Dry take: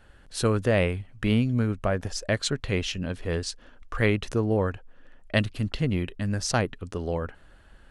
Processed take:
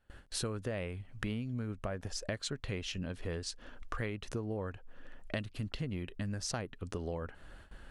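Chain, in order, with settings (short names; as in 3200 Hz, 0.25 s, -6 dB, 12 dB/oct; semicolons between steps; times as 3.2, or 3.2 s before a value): gate with hold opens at -44 dBFS; compressor 6:1, threshold -37 dBFS, peak gain reduction 18 dB; gain +1.5 dB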